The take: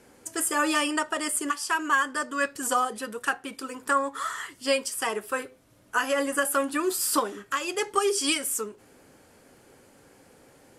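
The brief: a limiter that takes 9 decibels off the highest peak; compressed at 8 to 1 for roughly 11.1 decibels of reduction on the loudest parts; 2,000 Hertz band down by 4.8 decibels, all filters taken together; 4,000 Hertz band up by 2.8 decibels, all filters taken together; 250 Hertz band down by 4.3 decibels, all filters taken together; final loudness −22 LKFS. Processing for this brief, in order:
parametric band 250 Hz −5.5 dB
parametric band 2,000 Hz −8 dB
parametric band 4,000 Hz +7 dB
downward compressor 8 to 1, threshold −32 dBFS
level +15.5 dB
brickwall limiter −11.5 dBFS

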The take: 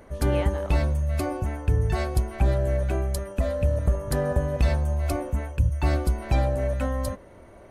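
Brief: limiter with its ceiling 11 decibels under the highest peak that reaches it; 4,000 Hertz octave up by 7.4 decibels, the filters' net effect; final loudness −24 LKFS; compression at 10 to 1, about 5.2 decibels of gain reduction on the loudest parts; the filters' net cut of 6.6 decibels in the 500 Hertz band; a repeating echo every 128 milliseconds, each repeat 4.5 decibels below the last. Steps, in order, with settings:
parametric band 500 Hz −8.5 dB
parametric band 4,000 Hz +9 dB
downward compressor 10 to 1, threshold −22 dBFS
brickwall limiter −23.5 dBFS
repeating echo 128 ms, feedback 60%, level −4.5 dB
level +8 dB

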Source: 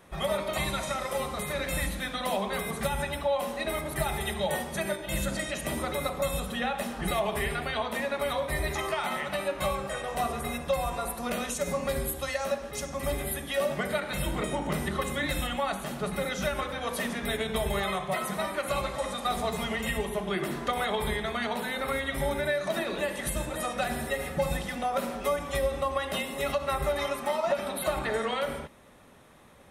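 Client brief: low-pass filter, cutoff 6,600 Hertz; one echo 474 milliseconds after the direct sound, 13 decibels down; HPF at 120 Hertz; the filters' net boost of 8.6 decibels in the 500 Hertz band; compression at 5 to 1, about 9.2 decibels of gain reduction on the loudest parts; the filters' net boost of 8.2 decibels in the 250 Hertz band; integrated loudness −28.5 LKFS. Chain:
high-pass filter 120 Hz
low-pass filter 6,600 Hz
parametric band 250 Hz +8.5 dB
parametric band 500 Hz +8.5 dB
downward compressor 5 to 1, threshold −25 dBFS
single-tap delay 474 ms −13 dB
level +0.5 dB

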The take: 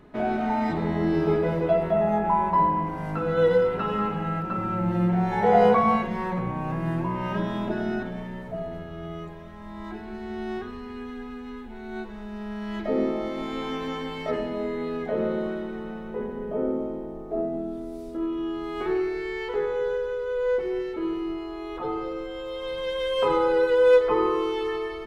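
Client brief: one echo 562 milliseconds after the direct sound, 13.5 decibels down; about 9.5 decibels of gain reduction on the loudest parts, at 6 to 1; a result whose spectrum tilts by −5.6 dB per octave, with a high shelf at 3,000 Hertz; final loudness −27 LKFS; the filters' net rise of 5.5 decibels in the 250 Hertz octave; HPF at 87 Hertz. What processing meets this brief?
high-pass filter 87 Hz
parametric band 250 Hz +8 dB
high-shelf EQ 3,000 Hz −8 dB
downward compressor 6 to 1, threshold −22 dBFS
single-tap delay 562 ms −13.5 dB
level +0.5 dB

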